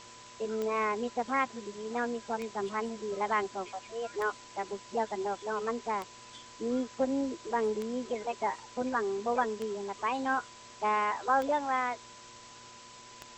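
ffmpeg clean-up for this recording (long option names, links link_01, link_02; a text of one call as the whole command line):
ffmpeg -i in.wav -af "adeclick=threshold=4,bandreject=frequency=118.1:width_type=h:width=4,bandreject=frequency=236.2:width_type=h:width=4,bandreject=frequency=354.3:width_type=h:width=4,bandreject=frequency=472.4:width_type=h:width=4,bandreject=frequency=590.5:width_type=h:width=4,bandreject=frequency=1000:width=30,afwtdn=0.0035" out.wav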